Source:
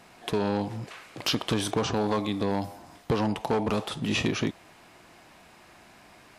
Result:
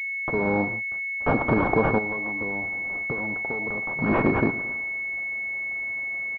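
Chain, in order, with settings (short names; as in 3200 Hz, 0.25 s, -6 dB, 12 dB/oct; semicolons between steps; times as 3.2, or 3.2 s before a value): opening faded in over 0.63 s; tilt +4.5 dB/oct; hard clip -15.5 dBFS, distortion -14 dB; feedback echo 0.111 s, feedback 53%, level -16.5 dB; 0.63–1.37 dip -10 dB, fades 0.16 s; 1.98–3.99 compressor 5:1, threshold -40 dBFS, peak gain reduction 14.5 dB; gate -47 dBFS, range -37 dB; low shelf 350 Hz +9.5 dB; pulse-width modulation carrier 2200 Hz; gain +7.5 dB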